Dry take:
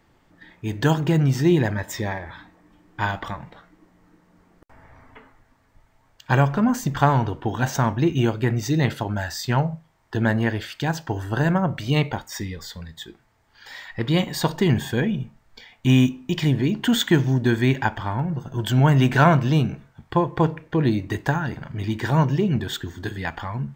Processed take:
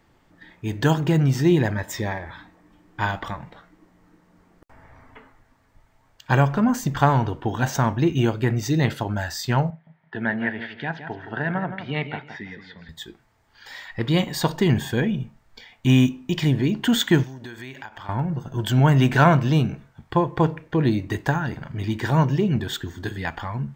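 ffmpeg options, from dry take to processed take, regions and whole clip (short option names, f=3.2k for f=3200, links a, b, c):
-filter_complex "[0:a]asettb=1/sr,asplit=3[a][b][c];[a]atrim=end=9.704[d];[b]atrim=start=9.7:end=12.89,asetpts=PTS-STARTPTS,afade=t=in:d=0.004:c=qsin,afade=t=out:st=3.186:d=0.004:c=qsin,highpass=230,equalizer=f=320:t=q:w=4:g=-8,equalizer=f=520:t=q:w=4:g=-9,equalizer=f=1.1k:t=q:w=4:g=-9,equalizer=f=1.9k:t=q:w=4:g=4,equalizer=f=2.8k:t=q:w=4:g=-4,lowpass=f=3k:w=0.5412,lowpass=f=3k:w=1.3066,bandreject=f=810:w=20,aecho=1:1:167|334|501:0.316|0.0759|0.0182,atrim=end_sample=140679[e];[c]atrim=start=12.886[f];[d][e]acrossfade=d=0.004:c1=hsin:c2=qsin[g];[g][f]acrossfade=d=0.004:c1=qsin:c2=hsin,asettb=1/sr,asplit=3[h][i][j];[h]atrim=end=17.234[k];[i]atrim=start=17.23:end=18.09,asetpts=PTS-STARTPTS,afade=t=in:d=0.004:c=qsin,afade=t=out:st=0.856:d=0.004:c=qsin,lowshelf=f=430:g=-12,acompressor=threshold=-34dB:ratio=6:attack=3.2:release=140:knee=1:detection=peak[l];[j]atrim=start=18.086[m];[k][l]acrossfade=d=0.004:c1=hsin:c2=qsin[n];[n][m]acrossfade=d=0.004:c1=qsin:c2=hsin"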